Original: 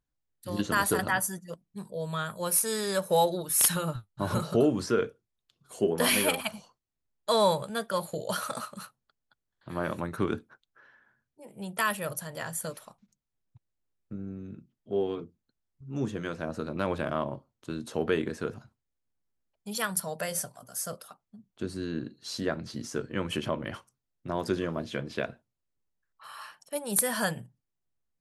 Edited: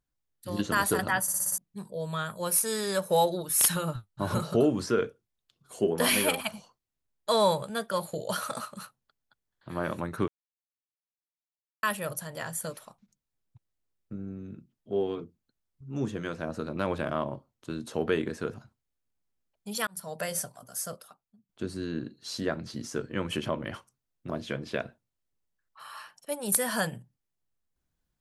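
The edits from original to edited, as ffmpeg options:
-filter_complex "[0:a]asplit=12[a][b][c][d][e][f][g][h][i][j][k][l];[a]atrim=end=1.282[m];[b]atrim=start=1.218:end=1.282[n];[c]atrim=start=1.218:end=1.282[o];[d]atrim=start=1.218:end=1.282[p];[e]atrim=start=1.218:end=1.282[q];[f]atrim=start=1.218:end=1.282[r];[g]atrim=start=1.578:end=10.28,asetpts=PTS-STARTPTS,afade=t=out:st=8.698:d=0.004:c=hsin[s];[h]atrim=start=10.28:end=11.83,asetpts=PTS-STARTPTS,volume=0[t];[i]atrim=start=11.83:end=19.87,asetpts=PTS-STARTPTS,afade=t=in:d=0.004:c=hsin,afade=t=out:st=8.036:d=0.004:c=hsin[u];[j]atrim=start=19.87:end=21.49,asetpts=PTS-STARTPTS,afade=t=in:d=0.33,afade=t=out:st=0.92:d=0.7:silence=0.105925[v];[k]atrim=start=21.49:end=24.302,asetpts=PTS-STARTPTS,afade=t=in:d=0.004:c=hsin:silence=0.105925[w];[l]atrim=start=24.738[x];[m][n]acrossfade=d=0.004:c1=hsin:c2=hsin[y];[y][o]acrossfade=d=0.004:c1=hsin:c2=hsin[z];[z][p]acrossfade=d=0.004:c1=hsin:c2=hsin[aa];[aa][q]acrossfade=d=0.004:c1=hsin:c2=hsin[ab];[ab][r]acrossfade=d=0.004:c1=hsin:c2=hsin[ac];[s][t][u][v][w]concat=n=5:v=0:a=1[ad];[ac][ad]acrossfade=d=0.004:c1=hsin:c2=hsin[ae];[ae][x]acrossfade=d=0.004:c1=hsin:c2=hsin"

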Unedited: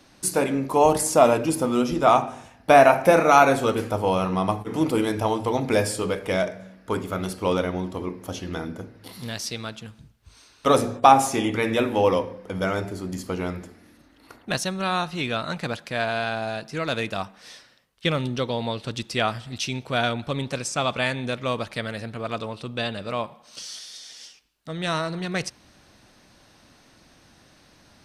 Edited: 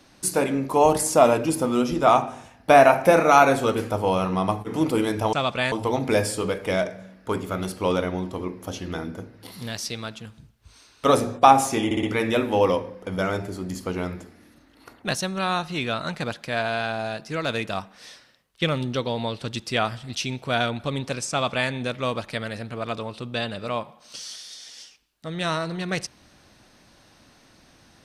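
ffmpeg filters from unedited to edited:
-filter_complex "[0:a]asplit=6[a][b][c][d][e][f];[a]atrim=end=5.332[g];[b]atrim=start=20.738:end=21.132[h];[c]atrim=start=5.328:end=11.522[i];[d]atrim=start=11.458:end=11.522[j];[e]atrim=start=11.458:end=11.522[k];[f]atrim=start=11.458[l];[g][h]acrossfade=d=0.004:c1=hsin:c2=hsin[m];[m][i]acrossfade=d=0.004:c1=hsin:c2=hsin[n];[n][j]acrossfade=d=0.004:c1=hsin:c2=hsin[o];[o][k]acrossfade=d=0.004:c1=hsin:c2=hsin[p];[p][l]acrossfade=d=0.004:c1=hsin:c2=hsin"

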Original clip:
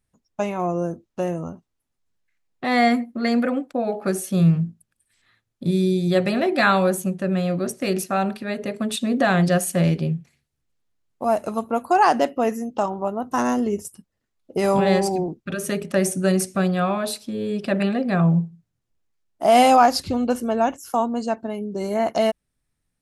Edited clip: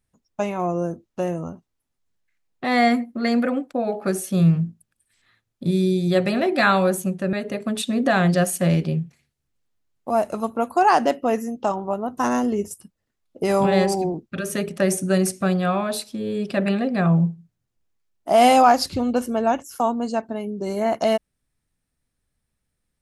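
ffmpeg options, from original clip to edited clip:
-filter_complex "[0:a]asplit=2[a][b];[a]atrim=end=7.332[c];[b]atrim=start=8.468[d];[c][d]acrossfade=d=0.004:c1=hsin:c2=hsin"

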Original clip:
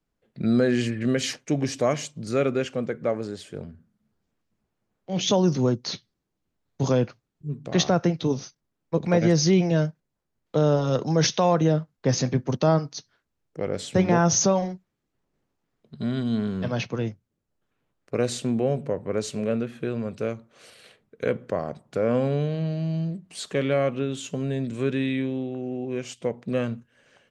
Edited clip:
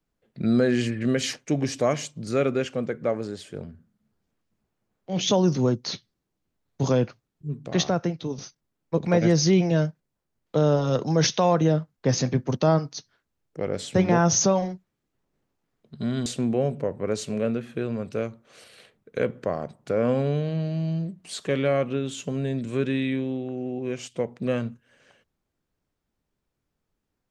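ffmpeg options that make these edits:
-filter_complex "[0:a]asplit=3[a][b][c];[a]atrim=end=8.38,asetpts=PTS-STARTPTS,afade=t=out:st=7.54:d=0.84:silence=0.398107[d];[b]atrim=start=8.38:end=16.262,asetpts=PTS-STARTPTS,afade=t=in:d=0.004:c=hsin:silence=0.398107[e];[c]atrim=start=18.318[f];[d][e]concat=n=2:v=0:a=1[g];[g][f]acrossfade=d=0.004:c1=hsin:c2=hsin"

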